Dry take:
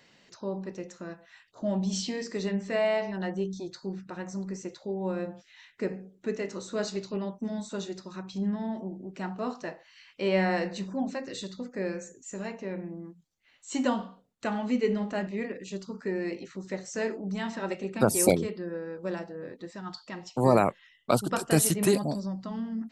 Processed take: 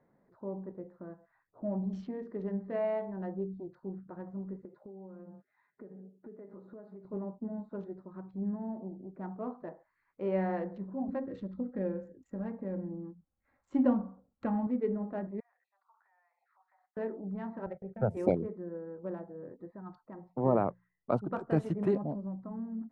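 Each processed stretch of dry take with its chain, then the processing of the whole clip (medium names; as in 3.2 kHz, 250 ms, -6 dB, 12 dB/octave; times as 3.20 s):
4.65–7.05 s: high-pass 110 Hz + comb 4.9 ms, depth 37% + compression 12:1, threshold -39 dBFS
11.08–14.67 s: peaking EQ 68 Hz +13.5 dB 2.6 oct + comb 3.7 ms, depth 49% + tape noise reduction on one side only encoder only
15.40–16.97 s: Chebyshev high-pass 740 Hz, order 6 + compression 20:1, threshold -52 dBFS
17.66–18.17 s: gate -40 dBFS, range -23 dB + tone controls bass +6 dB, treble -3 dB + static phaser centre 1.1 kHz, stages 6
20.00–21.12 s: treble shelf 2.8 kHz -7.5 dB + hum notches 60/120/180 Hz
whole clip: local Wiener filter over 15 samples; low-pass 1.2 kHz 12 dB/octave; trim -5 dB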